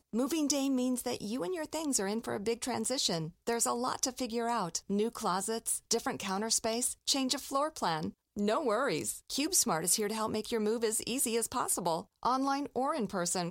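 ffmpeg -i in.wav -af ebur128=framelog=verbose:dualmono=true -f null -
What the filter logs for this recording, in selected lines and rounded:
Integrated loudness:
  I:         -29.1 LUFS
  Threshold: -39.1 LUFS
Loudness range:
  LRA:         2.1 LU
  Threshold: -49.0 LUFS
  LRA low:   -30.0 LUFS
  LRA high:  -27.8 LUFS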